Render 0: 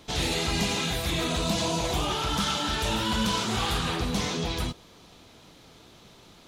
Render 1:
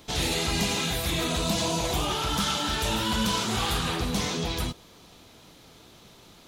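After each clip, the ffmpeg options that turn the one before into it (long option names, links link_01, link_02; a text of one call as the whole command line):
ffmpeg -i in.wav -af "highshelf=frequency=11000:gain=9" out.wav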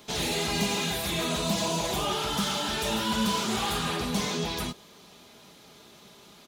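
ffmpeg -i in.wav -filter_complex "[0:a]highpass=frequency=150:poles=1,aecho=1:1:4.9:0.39,acrossover=split=930[link_01][link_02];[link_02]asoftclip=type=tanh:threshold=-26dB[link_03];[link_01][link_03]amix=inputs=2:normalize=0" out.wav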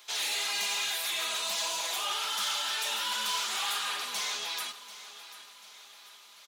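ffmpeg -i in.wav -af "highpass=1200,aecho=1:1:740|1480|2220|2960:0.178|0.0836|0.0393|0.0185" out.wav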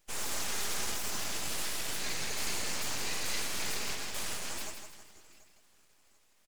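ffmpeg -i in.wav -af "afftdn=noise_reduction=14:noise_floor=-41,aecho=1:1:161|322|483|644|805:0.447|0.188|0.0788|0.0331|0.0139,aeval=exprs='abs(val(0))':channel_layout=same" out.wav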